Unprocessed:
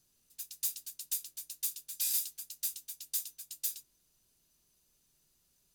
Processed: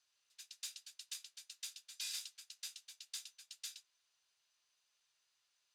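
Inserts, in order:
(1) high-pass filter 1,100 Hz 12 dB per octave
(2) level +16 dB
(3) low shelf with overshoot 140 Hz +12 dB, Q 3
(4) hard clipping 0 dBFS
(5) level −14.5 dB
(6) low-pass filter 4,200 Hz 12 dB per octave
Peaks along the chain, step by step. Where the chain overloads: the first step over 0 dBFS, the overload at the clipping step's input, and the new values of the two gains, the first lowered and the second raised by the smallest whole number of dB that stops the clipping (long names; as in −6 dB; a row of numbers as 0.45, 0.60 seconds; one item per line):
−18.0, −2.0, −2.0, −2.0, −16.5, −28.5 dBFS
no step passes full scale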